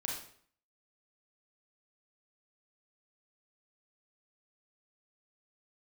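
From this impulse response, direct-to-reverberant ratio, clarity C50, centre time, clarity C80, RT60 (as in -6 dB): -2.5 dB, 3.0 dB, 42 ms, 7.5 dB, 0.55 s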